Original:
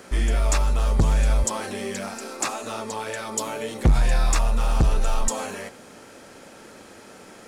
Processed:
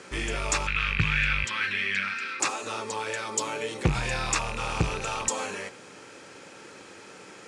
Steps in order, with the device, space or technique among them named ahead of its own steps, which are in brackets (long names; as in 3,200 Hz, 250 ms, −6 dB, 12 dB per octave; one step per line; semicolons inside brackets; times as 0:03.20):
car door speaker with a rattle (loose part that buzzes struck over −25 dBFS, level −25 dBFS; loudspeaker in its box 110–8,800 Hz, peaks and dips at 230 Hz −9 dB, 660 Hz −8 dB, 2,500 Hz +4 dB)
0:00.67–0:02.40: drawn EQ curve 150 Hz 0 dB, 380 Hz −12 dB, 800 Hz −16 dB, 1,500 Hz +9 dB, 2,300 Hz +11 dB, 3,700 Hz +4 dB, 7,000 Hz −14 dB